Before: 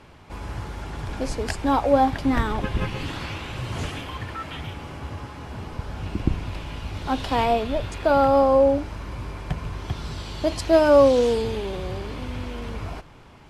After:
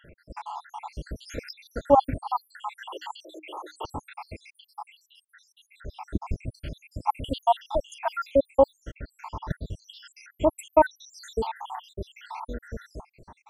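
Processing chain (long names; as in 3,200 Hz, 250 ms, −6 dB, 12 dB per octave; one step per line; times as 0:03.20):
time-frequency cells dropped at random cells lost 84%
0:02.88–0:03.85: Chebyshev high-pass filter 310 Hz, order 10
parametric band 910 Hz +12.5 dB 0.46 octaves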